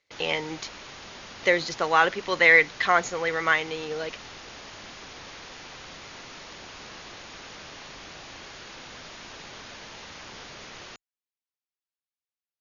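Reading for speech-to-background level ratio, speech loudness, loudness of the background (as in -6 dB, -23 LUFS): 19.0 dB, -22.5 LUFS, -41.5 LUFS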